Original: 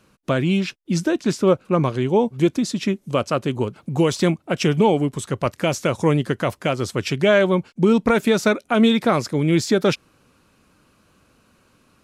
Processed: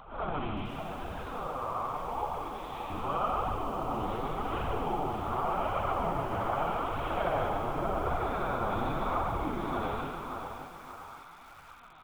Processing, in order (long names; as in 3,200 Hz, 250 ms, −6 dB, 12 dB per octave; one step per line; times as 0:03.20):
spectrum smeared in time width 264 ms
downward compressor 4 to 1, threshold −31 dBFS, peak gain reduction 12.5 dB
0:00.67–0:02.91: high-pass filter 480 Hz 12 dB per octave
linear-prediction vocoder at 8 kHz whisper
repeating echo 146 ms, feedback 57%, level −6.5 dB
flanger 0.86 Hz, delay 1 ms, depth 9.2 ms, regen −1%
echo through a band-pass that steps 581 ms, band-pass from 700 Hz, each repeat 0.7 octaves, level −6.5 dB
upward compression, threshold −52 dBFS
flat-topped bell 970 Hz +14.5 dB 1.2 octaves
feedback echo at a low word length 572 ms, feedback 35%, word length 8 bits, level −8.5 dB
level −1.5 dB